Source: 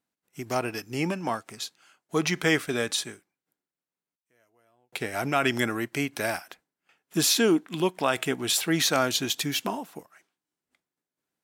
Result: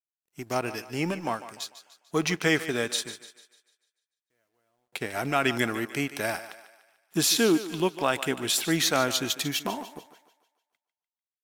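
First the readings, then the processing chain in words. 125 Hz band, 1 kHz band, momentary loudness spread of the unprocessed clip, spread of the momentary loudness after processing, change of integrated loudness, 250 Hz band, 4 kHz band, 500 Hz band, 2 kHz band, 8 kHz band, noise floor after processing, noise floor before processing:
-1.0 dB, -0.5 dB, 14 LU, 15 LU, -0.5 dB, -0.5 dB, -0.5 dB, -0.5 dB, -0.5 dB, -0.5 dB, under -85 dBFS, under -85 dBFS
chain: companding laws mixed up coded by A; thinning echo 148 ms, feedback 46%, high-pass 320 Hz, level -13 dB

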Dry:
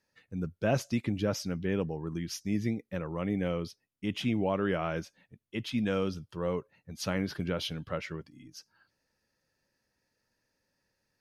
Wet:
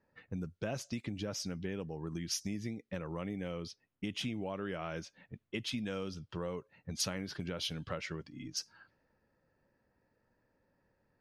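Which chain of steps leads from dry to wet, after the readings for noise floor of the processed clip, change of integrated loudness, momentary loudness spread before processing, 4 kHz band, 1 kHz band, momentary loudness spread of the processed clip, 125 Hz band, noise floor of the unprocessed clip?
-79 dBFS, -6.5 dB, 12 LU, 0.0 dB, -7.5 dB, 8 LU, -7.0 dB, -81 dBFS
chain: compression 5:1, threshold -44 dBFS, peak gain reduction 19 dB; low-pass 9.8 kHz 12 dB/octave; treble shelf 4.2 kHz +9.5 dB; level-controlled noise filter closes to 1.1 kHz, open at -41 dBFS; trim +6.5 dB

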